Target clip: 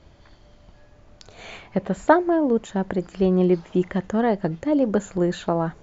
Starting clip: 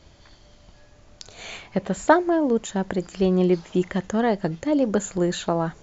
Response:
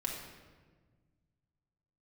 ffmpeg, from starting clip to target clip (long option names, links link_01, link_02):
-af "highshelf=frequency=3600:gain=-12,volume=1dB"